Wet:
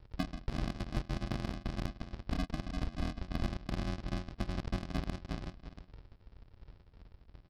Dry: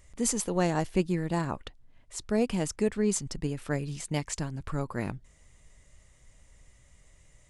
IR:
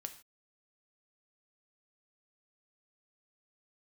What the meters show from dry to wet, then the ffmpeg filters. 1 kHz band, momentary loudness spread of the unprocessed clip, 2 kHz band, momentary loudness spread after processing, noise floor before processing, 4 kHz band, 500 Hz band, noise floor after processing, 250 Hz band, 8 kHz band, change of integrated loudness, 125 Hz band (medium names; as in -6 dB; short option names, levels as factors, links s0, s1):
-8.5 dB, 10 LU, -7.0 dB, 20 LU, -60 dBFS, -4.5 dB, -15.0 dB, -63 dBFS, -9.0 dB, -24.0 dB, -8.5 dB, -5.0 dB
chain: -filter_complex "[0:a]aeval=exprs='if(lt(val(0),0),0.447*val(0),val(0))':c=same,asplit=2[s0][s1];[s1]adelay=344,lowpass=f=3600:p=1,volume=0.376,asplit=2[s2][s3];[s3]adelay=344,lowpass=f=3600:p=1,volume=0.26,asplit=2[s4][s5];[s5]adelay=344,lowpass=f=3600:p=1,volume=0.26[s6];[s2][s4][s6]amix=inputs=3:normalize=0[s7];[s0][s7]amix=inputs=2:normalize=0,acompressor=threshold=0.0112:ratio=20,aresample=11025,acrusher=samples=24:mix=1:aa=0.000001,aresample=44100,aeval=exprs='0.0299*(cos(1*acos(clip(val(0)/0.0299,-1,1)))-cos(1*PI/2))+0.00266*(cos(6*acos(clip(val(0)/0.0299,-1,1)))-cos(6*PI/2))+0.00237*(cos(7*acos(clip(val(0)/0.0299,-1,1)))-cos(7*PI/2))':c=same,aeval=exprs='val(0)*sin(2*PI*43*n/s)':c=same,volume=2.99"